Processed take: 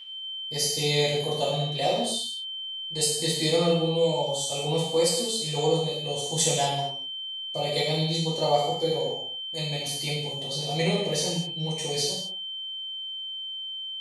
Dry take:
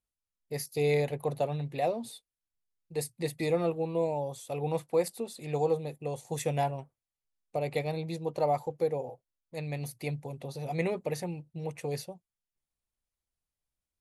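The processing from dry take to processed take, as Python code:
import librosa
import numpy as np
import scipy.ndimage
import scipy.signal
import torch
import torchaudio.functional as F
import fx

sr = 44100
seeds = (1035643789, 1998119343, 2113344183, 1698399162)

y = fx.band_shelf(x, sr, hz=5400.0, db=14.0, octaves=1.7)
y = y + 10.0 ** (-39.0 / 20.0) * np.sin(2.0 * np.pi * 3100.0 * np.arange(len(y)) / sr)
y = fx.rev_gated(y, sr, seeds[0], gate_ms=280, shape='falling', drr_db=-7.5)
y = F.gain(torch.from_numpy(y), -3.5).numpy()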